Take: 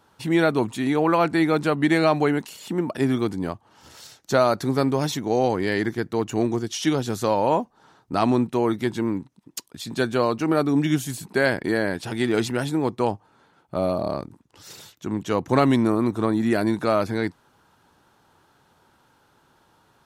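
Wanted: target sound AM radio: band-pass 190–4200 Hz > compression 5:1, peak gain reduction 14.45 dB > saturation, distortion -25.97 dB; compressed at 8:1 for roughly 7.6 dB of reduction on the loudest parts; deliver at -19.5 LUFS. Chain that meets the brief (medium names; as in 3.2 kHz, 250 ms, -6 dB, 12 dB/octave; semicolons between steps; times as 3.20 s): compression 8:1, threshold -22 dBFS; band-pass 190–4200 Hz; compression 5:1, threshold -37 dBFS; saturation -25.5 dBFS; trim +22 dB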